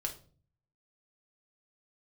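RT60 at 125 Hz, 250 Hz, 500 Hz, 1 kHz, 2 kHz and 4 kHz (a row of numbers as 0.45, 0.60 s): 0.85, 0.65, 0.50, 0.35, 0.30, 0.30 s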